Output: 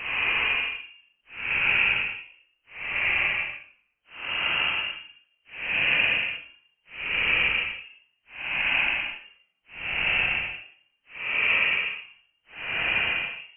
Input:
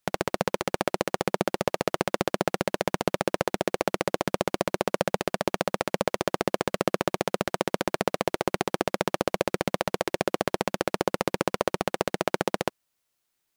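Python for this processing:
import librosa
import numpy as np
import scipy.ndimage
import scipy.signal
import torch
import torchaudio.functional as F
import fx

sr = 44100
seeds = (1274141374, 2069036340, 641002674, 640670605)

y = fx.freq_invert(x, sr, carrier_hz=3000)
y = fx.paulstretch(y, sr, seeds[0], factor=21.0, window_s=0.05, from_s=4.06)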